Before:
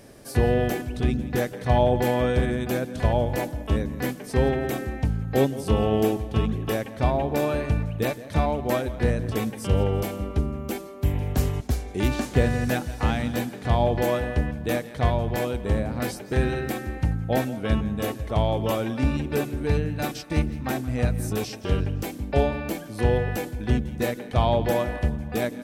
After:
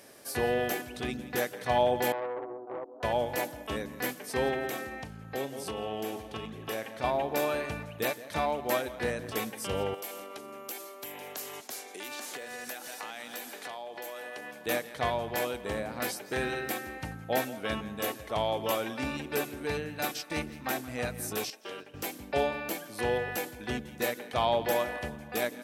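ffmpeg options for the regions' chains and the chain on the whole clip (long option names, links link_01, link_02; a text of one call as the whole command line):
ffmpeg -i in.wav -filter_complex "[0:a]asettb=1/sr,asplit=3[link_01][link_02][link_03];[link_01]atrim=end=2.124[link_04];[link_02]atrim=start=2.12:end=3.03,asetpts=PTS-STARTPTS,afade=type=in:duration=0.004:curve=qsin,afade=type=out:start_time=0.906:duration=0.004:curve=qsin,asuperpass=centerf=520:order=12:qfactor=0.78,aeval=exprs='(tanh(17.8*val(0)+0.7)-tanh(0.7))/17.8':channel_layout=same[link_05];[link_03]atrim=start=3.026[link_06];[link_04][link_05]acrossfade=duration=0.004:curve1=hsin:curve2=qsin[link_07];[link_07][link_06]acrossfade=duration=0.004:curve1=qsin:curve2=hsin,asettb=1/sr,asplit=3[link_08][link_09][link_10];[link_08]atrim=end=4.694[link_11];[link_09]atrim=start=4.69:end=7.04,asetpts=PTS-STARTPTS,afade=type=in:duration=0.004:curve=qsin,afade=type=out:start_time=2.346:duration=0.004:curve=qsin,asplit=2[link_12][link_13];[link_13]adelay=36,volume=-12dB[link_14];[link_12][link_14]amix=inputs=2:normalize=0,atrim=end_sample=103635,acompressor=threshold=-26dB:ratio=2.5:attack=3.2:release=140:knee=1:detection=peak,highshelf=frequency=12000:gain=-6.5[link_15];[link_10]atrim=start=7.036[link_16];[link_11][link_15]acrossfade=duration=0.004:curve1=hsin:curve2=qsin[link_17];[link_17][link_16]acrossfade=duration=0.004:curve1=qsin:curve2=hsin,asettb=1/sr,asplit=3[link_18][link_19][link_20];[link_18]atrim=end=9.944[link_21];[link_19]atrim=start=9.94:end=14.66,asetpts=PTS-STARTPTS,afade=type=in:duration=0.004:curve=qsin,afade=type=out:start_time=4.716:duration=0.004:curve=qsin,highpass=340,highshelf=frequency=4200:gain=6,acompressor=threshold=-33dB:ratio=10:attack=3.2:release=140:knee=1:detection=peak[link_22];[link_20]atrim=start=14.656[link_23];[link_21][link_22]acrossfade=duration=0.004:curve1=hsin:curve2=qsin[link_24];[link_24][link_23]acrossfade=duration=0.004:curve1=qsin:curve2=hsin,asettb=1/sr,asplit=3[link_25][link_26][link_27];[link_25]atrim=end=21.504[link_28];[link_26]atrim=start=21.5:end=21.94,asetpts=PTS-STARTPTS,afade=type=in:duration=0.004:curve=qsin,afade=type=out:start_time=0.436:duration=0.004:curve=qsin,highpass=310,agate=range=-9dB:threshold=-35dB:ratio=16:release=100:detection=peak,acompressor=threshold=-34dB:ratio=2.5:attack=3.2:release=140:knee=1:detection=peak[link_29];[link_27]atrim=start=21.936[link_30];[link_28][link_29]acrossfade=duration=0.004:curve1=hsin:curve2=qsin[link_31];[link_31][link_30]acrossfade=duration=0.004:curve1=qsin:curve2=hsin,highpass=frequency=770:poles=1,equalizer=frequency=12000:width=3.2:gain=4.5" out.wav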